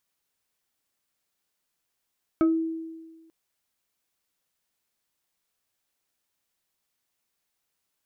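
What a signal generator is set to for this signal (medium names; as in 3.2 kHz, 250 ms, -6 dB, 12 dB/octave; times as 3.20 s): FM tone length 0.89 s, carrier 325 Hz, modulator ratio 2.94, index 0.59, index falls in 0.24 s exponential, decay 1.41 s, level -16 dB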